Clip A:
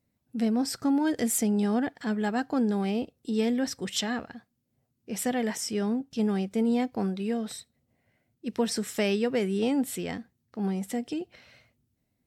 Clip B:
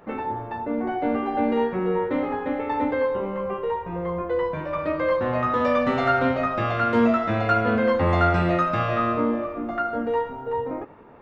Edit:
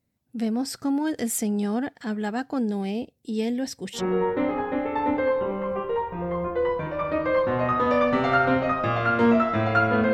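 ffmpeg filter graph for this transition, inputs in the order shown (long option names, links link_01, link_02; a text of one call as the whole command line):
ffmpeg -i cue0.wav -i cue1.wav -filter_complex "[0:a]asettb=1/sr,asplit=3[link_01][link_02][link_03];[link_01]atrim=end=2.594[link_04];[link_02]atrim=start=2.59:end=4.03,asetpts=PTS-STARTPTS,afade=type=in:duration=0.004:curve=qsin,afade=type=out:start_time=1.436:duration=0.004:curve=qsin,equalizer=frequency=1300:width=3:gain=-10[link_05];[link_03]atrim=start=4.026[link_06];[link_04][link_05]acrossfade=duration=0.004:curve1=hsin:curve2=qsin[link_07];[link_07][link_06]acrossfade=duration=0.004:curve1=qsin:curve2=hsin,apad=whole_dur=10.13,atrim=end=10.13,atrim=end=4.03,asetpts=PTS-STARTPTS[link_08];[1:a]atrim=start=1.67:end=7.87,asetpts=PTS-STARTPTS[link_09];[link_08][link_09]acrossfade=duration=0.1:curve1=tri:curve2=tri" out.wav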